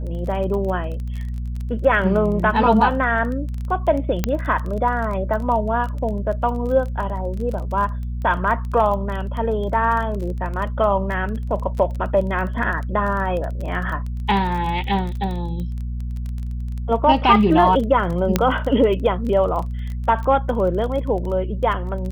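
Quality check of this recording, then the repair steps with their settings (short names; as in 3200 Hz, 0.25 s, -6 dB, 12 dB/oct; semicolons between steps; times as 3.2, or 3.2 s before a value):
crackle 20/s -27 dBFS
hum 60 Hz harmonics 4 -26 dBFS
4.24 pop -5 dBFS
18.36 pop -2 dBFS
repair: de-click; de-hum 60 Hz, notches 4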